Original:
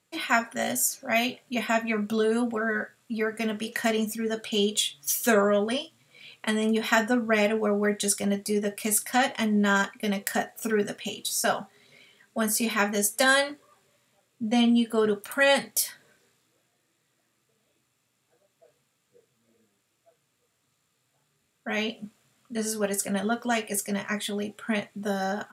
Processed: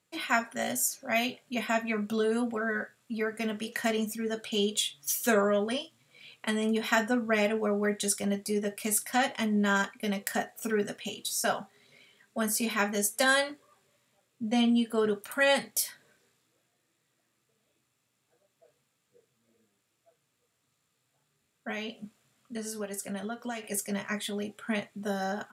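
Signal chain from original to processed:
0:21.70–0:23.64: downward compressor 10 to 1, threshold −29 dBFS, peak gain reduction 9 dB
level −3.5 dB

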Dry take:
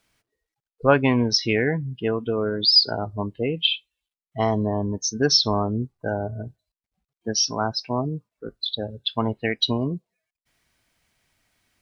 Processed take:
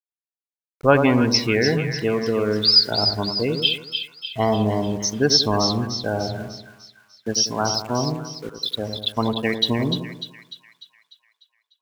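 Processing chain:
centre clipping without the shift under −40 dBFS
echo with a time of its own for lows and highs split 1,400 Hz, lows 94 ms, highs 298 ms, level −7 dB
level +1.5 dB

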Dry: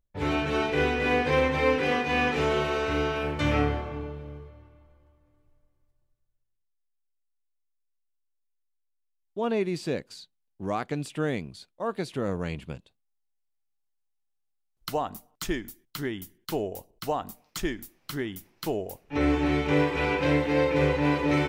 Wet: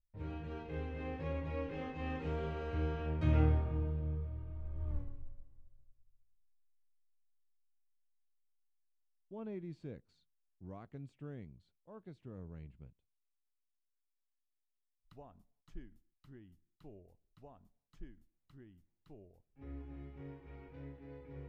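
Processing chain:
source passing by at 0:04.94, 18 m/s, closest 1.2 metres
RIAA equalisation playback
level +14 dB

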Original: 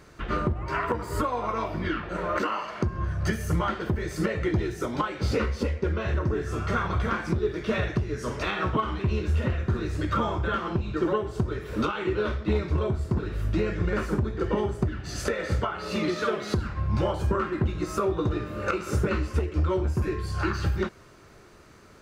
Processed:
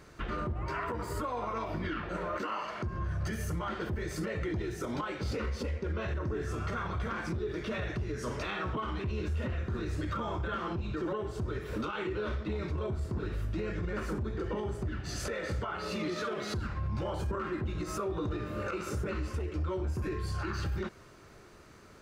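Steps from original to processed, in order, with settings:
brickwall limiter −24 dBFS, peak gain reduction 10.5 dB
level −2.5 dB

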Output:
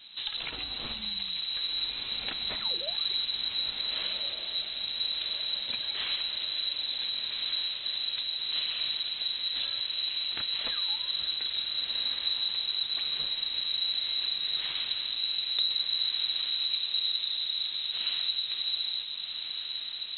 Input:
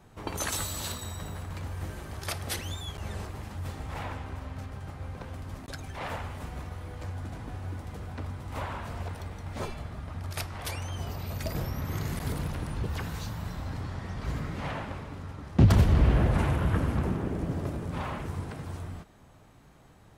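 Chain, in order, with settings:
dynamic equaliser 110 Hz, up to +5 dB, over −38 dBFS, Q 1.1
downward compressor 6 to 1, threshold −36 dBFS, peak gain reduction 24 dB
feedback delay with all-pass diffusion 1,453 ms, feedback 60%, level −5 dB
voice inversion scrambler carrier 4,000 Hz
level +4.5 dB

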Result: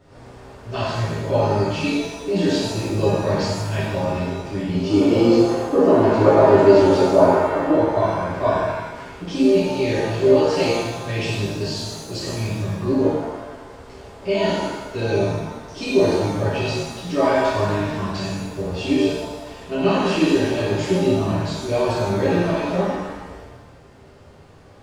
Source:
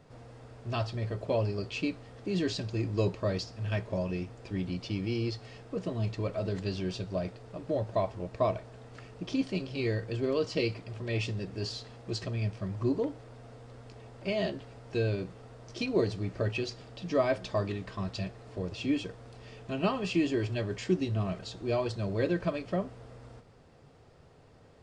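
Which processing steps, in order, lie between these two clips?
gain on a spectral selection 0:04.89–0:07.72, 220–1,500 Hz +12 dB
reverb with rising layers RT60 1.1 s, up +7 semitones, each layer −8 dB, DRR −10 dB

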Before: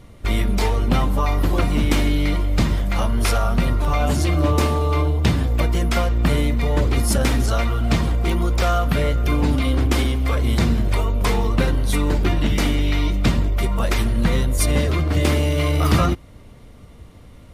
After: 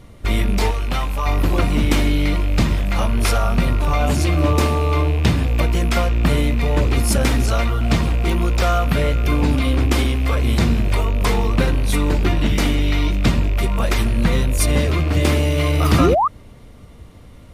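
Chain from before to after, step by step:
loose part that buzzes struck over −19 dBFS, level −24 dBFS
0:00.71–0:01.26: parametric band 200 Hz −11.5 dB 3 octaves
0:15.99–0:16.28: sound drawn into the spectrogram rise 240–1,300 Hz −17 dBFS
level +1.5 dB

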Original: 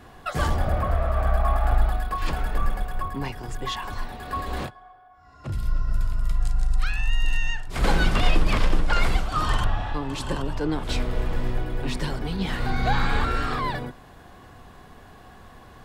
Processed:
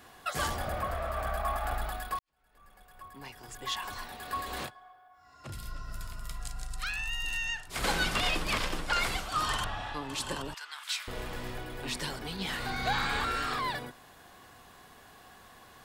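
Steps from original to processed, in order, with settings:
0:10.54–0:11.08: high-pass filter 1,200 Hz 24 dB per octave
spectral tilt +2.5 dB per octave
0:02.19–0:03.86: fade in quadratic
level −5 dB

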